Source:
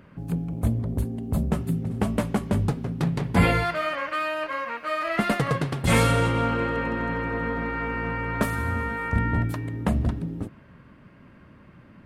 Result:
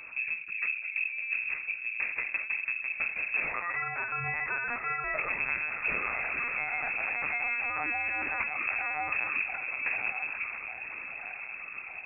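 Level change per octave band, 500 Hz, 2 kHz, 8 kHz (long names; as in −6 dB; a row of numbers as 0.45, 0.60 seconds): −17.0 dB, +2.5 dB, below −40 dB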